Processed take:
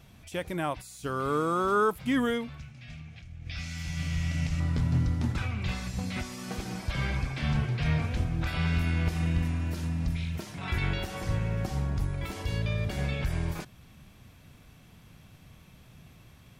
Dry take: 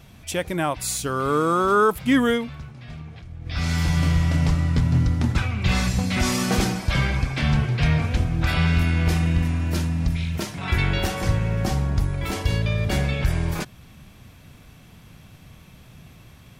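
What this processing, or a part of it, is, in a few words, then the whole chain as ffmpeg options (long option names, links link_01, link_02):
de-esser from a sidechain: -filter_complex "[0:a]asettb=1/sr,asplit=3[link_01][link_02][link_03];[link_01]atrim=end=2.584[link_04];[link_02]atrim=start=2.58:end=4.6,asetpts=PTS-STARTPTS,afade=type=in:duration=0.004:curve=qsin,afade=type=out:start_time=2.016:duration=0.004:curve=qsin,equalizer=frequency=400:width_type=o:width=0.67:gain=-11,equalizer=frequency=1000:width_type=o:width=0.67:gain=-8,equalizer=frequency=2500:width_type=o:width=0.67:gain=7,equalizer=frequency=6300:width_type=o:width=0.67:gain=6[link_05];[link_03]atrim=start=4.596[link_06];[link_04][link_05]acrossfade=duration=0.004:curve1=hsin:curve2=qsin[link_07];[link_07][link_06]acrossfade=duration=0.004:curve1=qsin:curve2=hsin,asplit=2[link_08][link_09];[link_09]highpass=frequency=4600:width=0.5412,highpass=frequency=4600:width=1.3066,apad=whole_len=731624[link_10];[link_08][link_10]sidechaincompress=threshold=-42dB:ratio=5:attack=4.7:release=27,volume=-6.5dB"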